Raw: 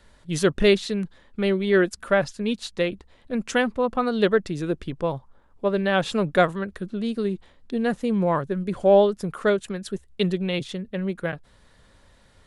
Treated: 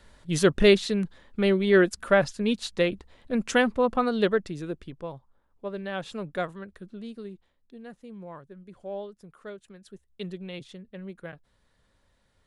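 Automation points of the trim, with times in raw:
3.91 s 0 dB
5.09 s -11.5 dB
6.98 s -11.5 dB
7.79 s -20 dB
9.53 s -20 dB
10.31 s -12.5 dB

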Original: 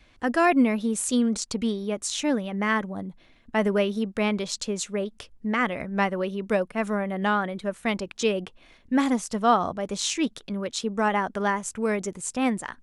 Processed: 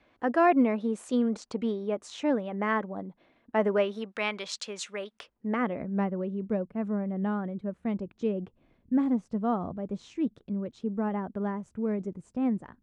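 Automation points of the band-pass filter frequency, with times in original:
band-pass filter, Q 0.6
3.62 s 570 Hz
4.20 s 1.9 kHz
5.10 s 1.9 kHz
5.59 s 360 Hz
6.20 s 140 Hz

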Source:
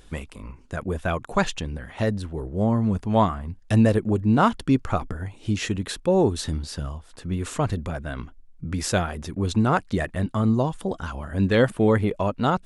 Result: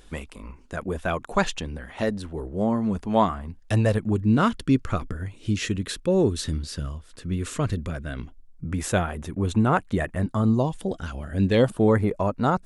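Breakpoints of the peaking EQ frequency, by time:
peaking EQ -10.5 dB 0.61 oct
3.58 s 110 Hz
4.25 s 810 Hz
8.07 s 810 Hz
8.79 s 4.9 kHz
10.01 s 4.9 kHz
10.88 s 1 kHz
11.40 s 1 kHz
11.92 s 3.1 kHz

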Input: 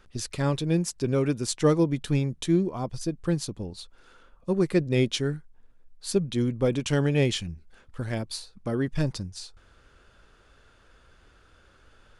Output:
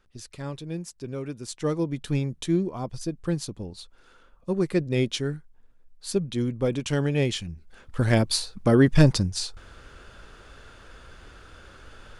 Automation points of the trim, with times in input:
1.31 s -9 dB
2.16 s -1 dB
7.46 s -1 dB
8.08 s +10 dB

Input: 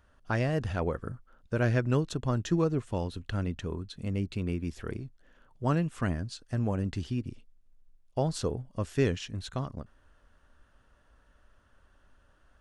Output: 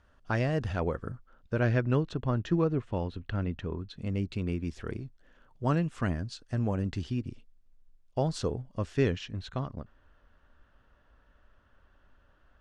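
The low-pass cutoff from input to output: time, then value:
1.07 s 7.2 kHz
2.16 s 3.2 kHz
3.75 s 3.2 kHz
4.22 s 7.2 kHz
8.52 s 7.2 kHz
9.35 s 4.1 kHz

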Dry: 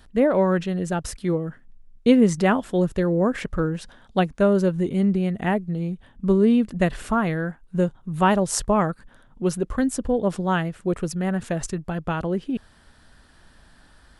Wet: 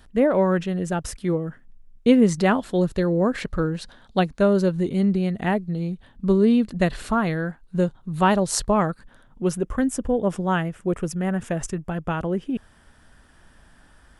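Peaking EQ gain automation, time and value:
peaking EQ 4.2 kHz 0.29 oct
2.07 s -3 dB
2.48 s +8 dB
8.71 s +8 dB
9.44 s -3 dB
9.68 s -11 dB

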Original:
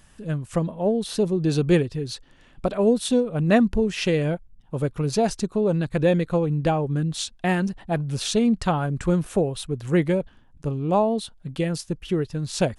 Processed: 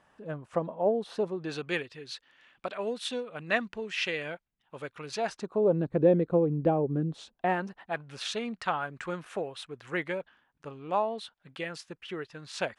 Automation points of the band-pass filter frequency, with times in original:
band-pass filter, Q 1
1.08 s 790 Hz
1.70 s 2.1 kHz
5.16 s 2.1 kHz
5.81 s 380 Hz
7.06 s 380 Hz
7.93 s 1.7 kHz

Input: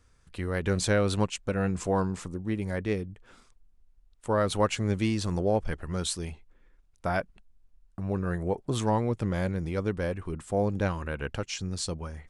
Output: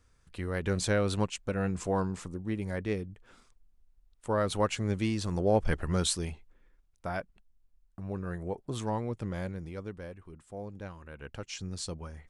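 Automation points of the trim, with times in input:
5.32 s -3 dB
5.77 s +4.5 dB
7.07 s -6.5 dB
9.39 s -6.5 dB
10.25 s -14.5 dB
11.04 s -14.5 dB
11.56 s -5 dB

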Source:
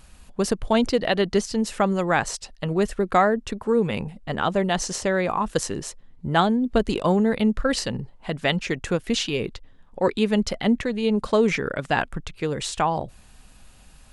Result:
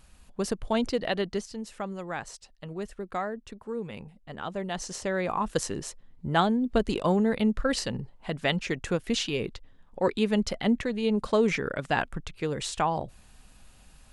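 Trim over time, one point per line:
1.16 s -6.5 dB
1.59 s -13.5 dB
4.30 s -13.5 dB
5.42 s -4 dB

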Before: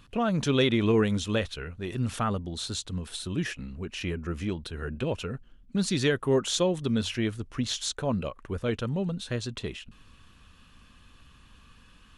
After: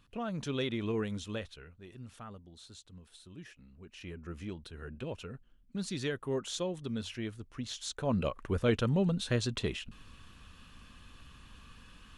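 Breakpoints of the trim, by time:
1.30 s -10.5 dB
2.06 s -19 dB
3.60 s -19 dB
4.31 s -10 dB
7.79 s -10 dB
8.27 s +1 dB

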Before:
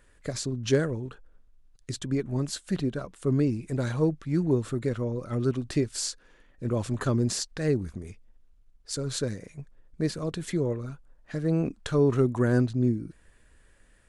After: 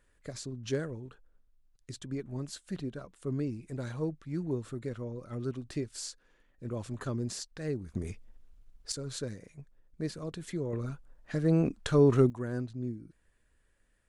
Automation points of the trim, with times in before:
-9 dB
from 7.95 s +3 dB
from 8.92 s -7.5 dB
from 10.73 s 0 dB
from 12.30 s -12 dB

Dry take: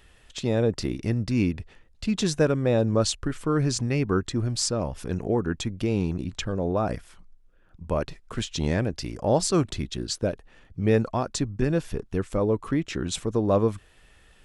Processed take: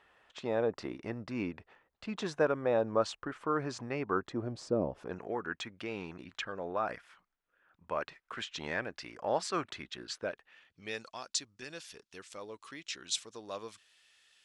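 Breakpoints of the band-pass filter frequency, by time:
band-pass filter, Q 1.1
4.14 s 1 kHz
4.82 s 340 Hz
5.26 s 1.6 kHz
10.26 s 1.6 kHz
11.01 s 4.8 kHz

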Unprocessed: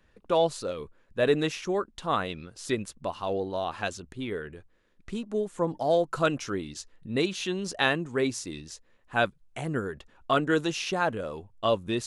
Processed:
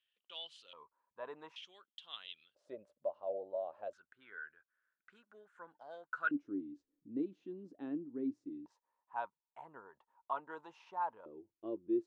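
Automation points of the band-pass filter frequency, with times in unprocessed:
band-pass filter, Q 11
3.1 kHz
from 0.73 s 970 Hz
from 1.56 s 3.2 kHz
from 2.55 s 590 Hz
from 3.93 s 1.5 kHz
from 6.31 s 290 Hz
from 8.66 s 930 Hz
from 11.26 s 340 Hz

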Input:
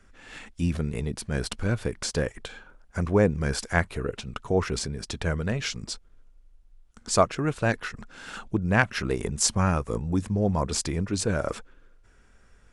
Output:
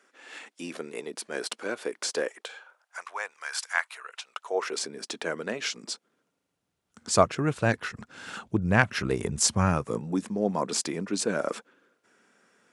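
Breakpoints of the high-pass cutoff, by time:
high-pass 24 dB/octave
2.22 s 320 Hz
3.08 s 930 Hz
4.14 s 930 Hz
4.92 s 260 Hz
5.76 s 260 Hz
7.31 s 78 Hz
9.63 s 78 Hz
10.16 s 200 Hz

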